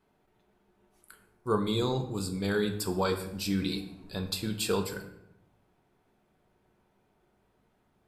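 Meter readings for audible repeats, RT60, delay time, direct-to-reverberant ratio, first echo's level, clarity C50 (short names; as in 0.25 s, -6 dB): none, 0.80 s, none, 5.0 dB, none, 10.0 dB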